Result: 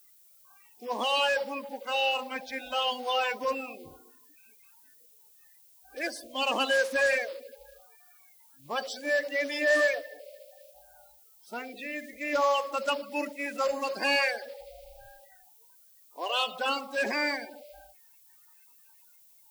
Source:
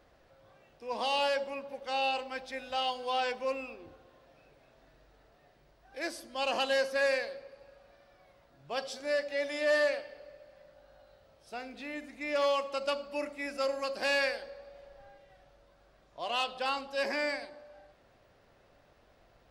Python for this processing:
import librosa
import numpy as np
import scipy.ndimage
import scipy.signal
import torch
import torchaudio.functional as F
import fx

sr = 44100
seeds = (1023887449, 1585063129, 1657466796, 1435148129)

y = fx.spec_quant(x, sr, step_db=30)
y = fx.noise_reduce_blind(y, sr, reduce_db=25)
y = fx.dmg_noise_colour(y, sr, seeds[0], colour='violet', level_db=-63.0)
y = y * librosa.db_to_amplitude(4.0)